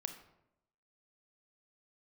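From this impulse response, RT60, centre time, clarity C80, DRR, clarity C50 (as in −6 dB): 0.85 s, 14 ms, 12.0 dB, 7.0 dB, 9.5 dB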